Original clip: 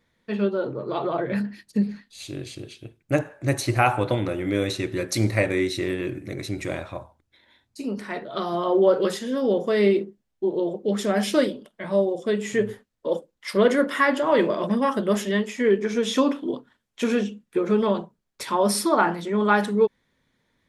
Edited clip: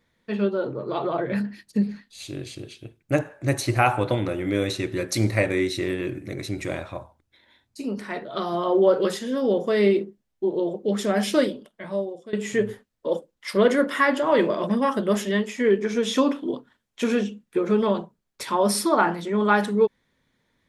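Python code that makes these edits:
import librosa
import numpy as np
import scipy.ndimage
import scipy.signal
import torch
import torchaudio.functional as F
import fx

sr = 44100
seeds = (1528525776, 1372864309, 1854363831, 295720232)

y = fx.edit(x, sr, fx.fade_out_to(start_s=11.53, length_s=0.8, floor_db=-18.0), tone=tone)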